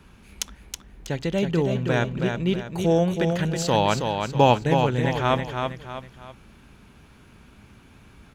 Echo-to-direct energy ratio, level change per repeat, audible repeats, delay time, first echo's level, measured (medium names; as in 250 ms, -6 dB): -5.0 dB, -8.0 dB, 3, 322 ms, -5.5 dB